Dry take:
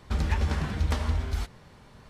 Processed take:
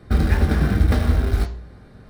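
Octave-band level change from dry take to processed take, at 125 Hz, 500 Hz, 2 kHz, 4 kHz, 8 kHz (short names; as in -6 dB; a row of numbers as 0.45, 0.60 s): +9.0, +11.0, +7.5, +3.5, +3.5 dB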